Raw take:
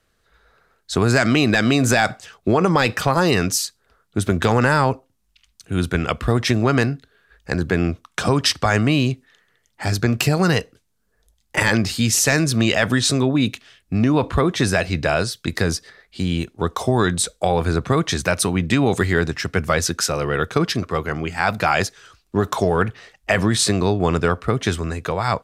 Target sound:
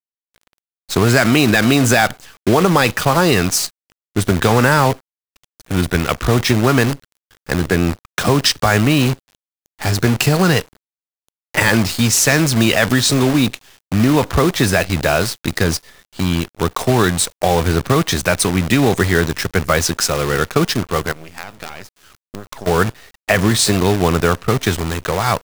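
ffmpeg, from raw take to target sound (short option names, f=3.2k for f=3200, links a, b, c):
-filter_complex "[0:a]asplit=3[a][b][c];[a]afade=t=out:st=21.11:d=0.02[d];[b]acompressor=threshold=-32dB:ratio=5,afade=t=in:st=21.11:d=0.02,afade=t=out:st=22.66:d=0.02[e];[c]afade=t=in:st=22.66:d=0.02[f];[d][e][f]amix=inputs=3:normalize=0,acrusher=bits=5:dc=4:mix=0:aa=0.000001,volume=3.5dB"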